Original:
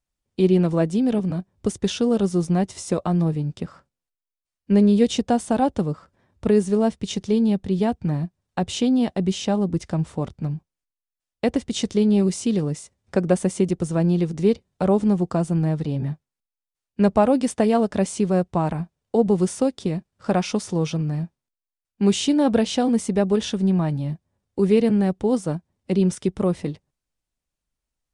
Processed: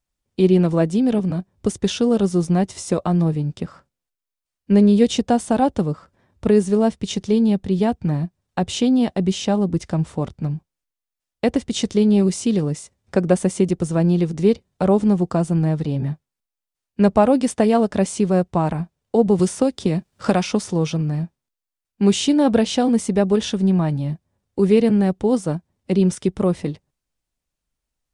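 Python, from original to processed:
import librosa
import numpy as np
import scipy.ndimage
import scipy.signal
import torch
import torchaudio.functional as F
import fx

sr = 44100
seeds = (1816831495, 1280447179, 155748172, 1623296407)

y = fx.band_squash(x, sr, depth_pct=70, at=(19.39, 20.67))
y = F.gain(torch.from_numpy(y), 2.5).numpy()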